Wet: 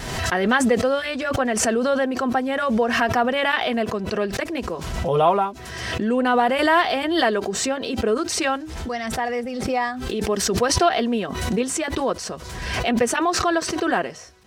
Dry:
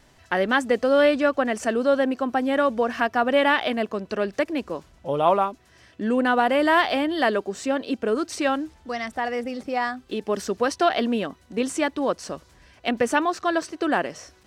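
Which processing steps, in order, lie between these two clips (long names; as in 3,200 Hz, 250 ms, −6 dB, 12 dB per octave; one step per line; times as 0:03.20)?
notch comb filter 290 Hz
background raised ahead of every attack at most 37 dB per second
level +2 dB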